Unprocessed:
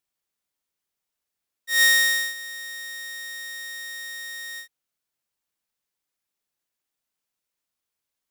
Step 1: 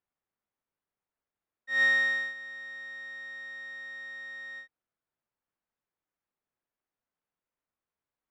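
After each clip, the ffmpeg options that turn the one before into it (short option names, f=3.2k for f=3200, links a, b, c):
-af "lowpass=1.6k"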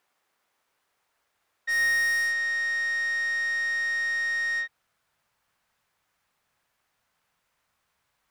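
-filter_complex "[0:a]asubboost=boost=9:cutoff=110,asplit=2[a][b];[b]highpass=f=720:p=1,volume=29dB,asoftclip=type=tanh:threshold=-17dB[c];[a][c]amix=inputs=2:normalize=0,lowpass=f=6.3k:p=1,volume=-6dB,volume=-2.5dB"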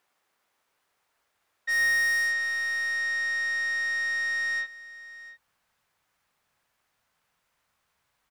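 -af "aecho=1:1:697:0.133"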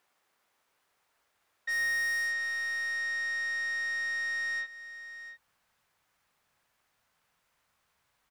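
-af "acompressor=threshold=-40dB:ratio=1.5"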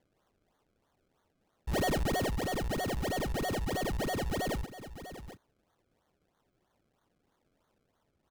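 -af "acrusher=samples=33:mix=1:aa=0.000001:lfo=1:lforange=33:lforate=3.1"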